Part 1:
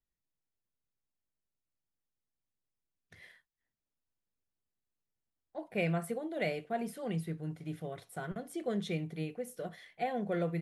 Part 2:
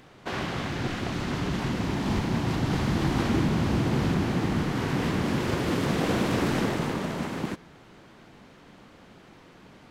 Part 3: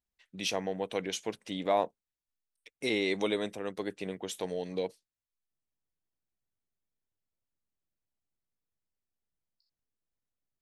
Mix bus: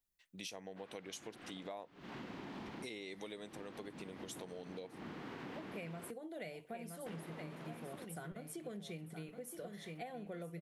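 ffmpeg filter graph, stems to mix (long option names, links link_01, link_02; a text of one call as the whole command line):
ffmpeg -i stem1.wav -i stem2.wav -i stem3.wav -filter_complex "[0:a]volume=-2.5dB,asplit=2[link_01][link_02];[link_02]volume=-9.5dB[link_03];[1:a]acrossover=split=190 3900:gain=0.178 1 0.158[link_04][link_05][link_06];[link_04][link_05][link_06]amix=inputs=3:normalize=0,adelay=500,volume=-13.5dB,asplit=3[link_07][link_08][link_09];[link_07]atrim=end=6.11,asetpts=PTS-STARTPTS,afade=type=out:start_time=6.106:duration=0.004:curve=hsin[link_10];[link_08]atrim=start=6.11:end=7.06,asetpts=PTS-STARTPTS,volume=0[link_11];[link_09]atrim=start=7.06,asetpts=PTS-STARTPTS,afade=type=in:duration=0.004:curve=hsin[link_12];[link_10][link_11][link_12]concat=n=3:v=0:a=1[link_13];[2:a]volume=-8dB,asplit=2[link_14][link_15];[link_15]apad=whole_len=458866[link_16];[link_13][link_16]sidechaincompress=threshold=-46dB:ratio=12:attack=6.1:release=281[link_17];[link_03]aecho=0:1:969|1938|2907|3876:1|0.31|0.0961|0.0298[link_18];[link_01][link_17][link_14][link_18]amix=inputs=4:normalize=0,highshelf=frequency=6300:gain=9.5,acompressor=threshold=-44dB:ratio=6" out.wav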